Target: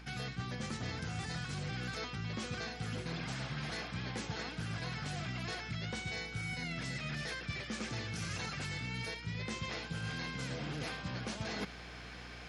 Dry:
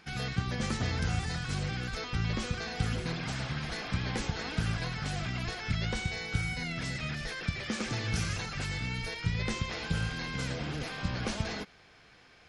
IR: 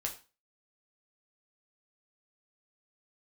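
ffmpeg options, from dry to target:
-af "highpass=f=100:w=0.5412,highpass=f=100:w=1.3066,areverse,acompressor=threshold=-45dB:ratio=16,areverse,aeval=exprs='val(0)+0.001*(sin(2*PI*60*n/s)+sin(2*PI*2*60*n/s)/2+sin(2*PI*3*60*n/s)/3+sin(2*PI*4*60*n/s)/4+sin(2*PI*5*60*n/s)/5)':c=same,volume=8.5dB"

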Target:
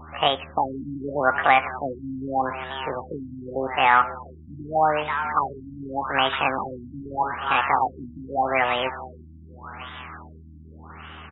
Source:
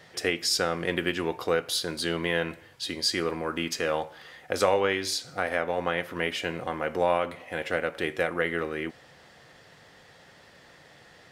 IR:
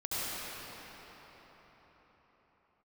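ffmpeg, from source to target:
-filter_complex "[0:a]firequalizer=gain_entry='entry(340,0);entry(800,12);entry(1900,3);entry(3200,-16);entry(11000,-14)':delay=0.05:min_phase=1,asplit=2[a][b];[b]alimiter=limit=-12dB:level=0:latency=1:release=40,volume=-1dB[c];[a][c]amix=inputs=2:normalize=0,aeval=exprs='val(0)+0.00631*(sin(2*PI*50*n/s)+sin(2*PI*2*50*n/s)/2+sin(2*PI*3*50*n/s)/3+sin(2*PI*4*50*n/s)/4+sin(2*PI*5*50*n/s)/5)':c=same,asetrate=70004,aresample=44100,atempo=0.629961,acrusher=bits=4:mode=log:mix=0:aa=0.000001,asplit=2[d][e];[e]asplit=6[f][g][h][i][j][k];[f]adelay=480,afreqshift=120,volume=-13.5dB[l];[g]adelay=960,afreqshift=240,volume=-17.9dB[m];[h]adelay=1440,afreqshift=360,volume=-22.4dB[n];[i]adelay=1920,afreqshift=480,volume=-26.8dB[o];[j]adelay=2400,afreqshift=600,volume=-31.2dB[p];[k]adelay=2880,afreqshift=720,volume=-35.7dB[q];[l][m][n][o][p][q]amix=inputs=6:normalize=0[r];[d][r]amix=inputs=2:normalize=0,afftfilt=real='re*lt(b*sr/1024,310*pow(3900/310,0.5+0.5*sin(2*PI*0.83*pts/sr)))':imag='im*lt(b*sr/1024,310*pow(3900/310,0.5+0.5*sin(2*PI*0.83*pts/sr)))':win_size=1024:overlap=0.75"

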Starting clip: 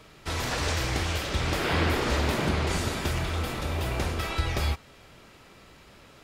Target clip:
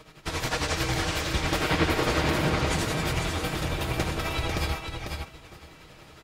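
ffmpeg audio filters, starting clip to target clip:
-filter_complex "[0:a]aecho=1:1:6.4:0.4,asplit=2[a][b];[b]aecho=0:1:952:0.0841[c];[a][c]amix=inputs=2:normalize=0,tremolo=f=11:d=0.66,asplit=2[d][e];[e]aecho=0:1:496:0.531[f];[d][f]amix=inputs=2:normalize=0,volume=3dB"

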